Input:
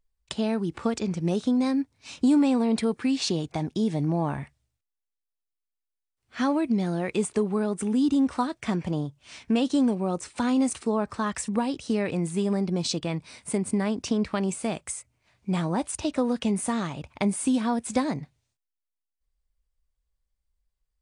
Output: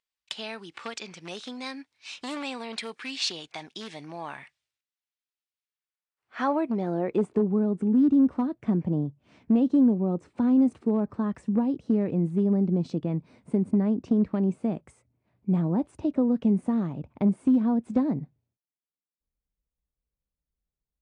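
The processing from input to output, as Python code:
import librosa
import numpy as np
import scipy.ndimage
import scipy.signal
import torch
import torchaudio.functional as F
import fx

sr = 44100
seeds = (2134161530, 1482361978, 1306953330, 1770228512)

y = np.minimum(x, 2.0 * 10.0 ** (-18.5 / 20.0) - x)
y = fx.filter_sweep_bandpass(y, sr, from_hz=2900.0, to_hz=220.0, start_s=5.56, end_s=7.52, q=0.88)
y = y * librosa.db_to_amplitude(3.5)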